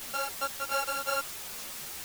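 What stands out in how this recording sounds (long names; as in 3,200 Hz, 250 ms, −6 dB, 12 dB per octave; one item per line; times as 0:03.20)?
a buzz of ramps at a fixed pitch in blocks of 32 samples
tremolo saw down 2.8 Hz, depth 65%
a quantiser's noise floor 6 bits, dither triangular
a shimmering, thickened sound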